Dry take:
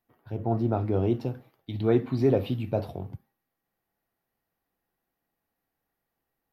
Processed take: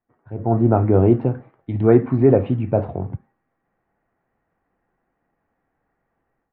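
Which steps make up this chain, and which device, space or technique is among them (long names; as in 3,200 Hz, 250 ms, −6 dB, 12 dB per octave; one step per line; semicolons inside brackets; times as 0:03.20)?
action camera in a waterproof case (low-pass filter 2,000 Hz 24 dB per octave; automatic gain control gain up to 12 dB; AAC 128 kbit/s 48,000 Hz)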